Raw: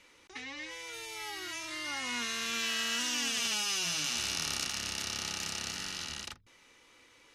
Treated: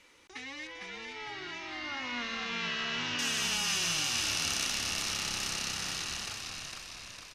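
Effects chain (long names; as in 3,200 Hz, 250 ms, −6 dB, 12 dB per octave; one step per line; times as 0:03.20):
0:00.67–0:03.19: Bessel low-pass filter 3,400 Hz, order 6
echo with shifted repeats 455 ms, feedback 58%, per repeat −66 Hz, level −4 dB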